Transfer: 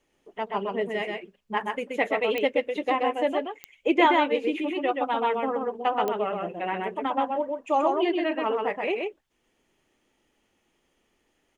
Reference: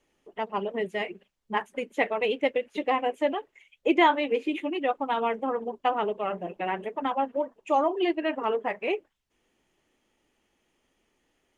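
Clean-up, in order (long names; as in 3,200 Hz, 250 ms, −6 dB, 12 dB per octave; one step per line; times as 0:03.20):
click removal
echo removal 128 ms −3.5 dB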